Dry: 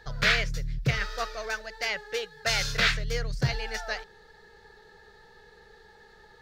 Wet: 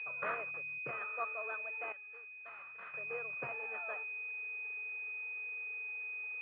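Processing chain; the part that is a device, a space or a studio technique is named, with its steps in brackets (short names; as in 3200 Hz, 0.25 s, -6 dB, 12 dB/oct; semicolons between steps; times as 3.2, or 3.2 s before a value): toy sound module (decimation joined by straight lines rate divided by 6×; pulse-width modulation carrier 2500 Hz; speaker cabinet 570–3800 Hz, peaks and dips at 830 Hz -5 dB, 1200 Hz +7 dB, 3300 Hz -4 dB); 1.92–2.94 passive tone stack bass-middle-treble 5-5-5; gain -4.5 dB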